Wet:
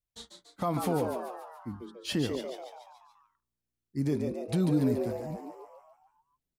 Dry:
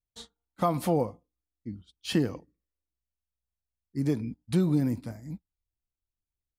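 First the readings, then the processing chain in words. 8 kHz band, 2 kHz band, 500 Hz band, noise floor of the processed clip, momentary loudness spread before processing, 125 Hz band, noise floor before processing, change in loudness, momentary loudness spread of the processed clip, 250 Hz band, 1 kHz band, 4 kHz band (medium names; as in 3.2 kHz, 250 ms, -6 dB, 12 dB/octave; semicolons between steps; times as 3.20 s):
0.0 dB, -0.5 dB, 0.0 dB, under -85 dBFS, 19 LU, -2.5 dB, under -85 dBFS, -2.5 dB, 20 LU, -1.5 dB, -1.5 dB, 0.0 dB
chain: peak limiter -18.5 dBFS, peak gain reduction 5.5 dB; frequency-shifting echo 143 ms, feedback 55%, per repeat +120 Hz, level -6 dB; trim -1 dB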